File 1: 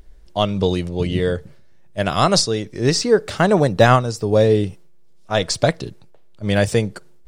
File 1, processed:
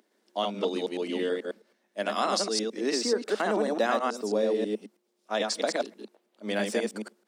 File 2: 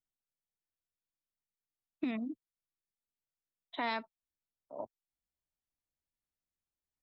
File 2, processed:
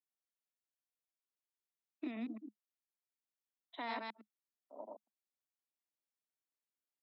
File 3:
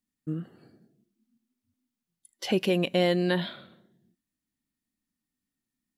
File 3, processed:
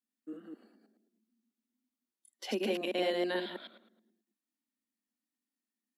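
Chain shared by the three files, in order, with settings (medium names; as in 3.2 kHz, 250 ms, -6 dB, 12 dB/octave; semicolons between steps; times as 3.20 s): chunks repeated in reverse 108 ms, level -1.5 dB; Chebyshev high-pass 210 Hz, order 6; compression 2.5:1, threshold -17 dBFS; trim -7.5 dB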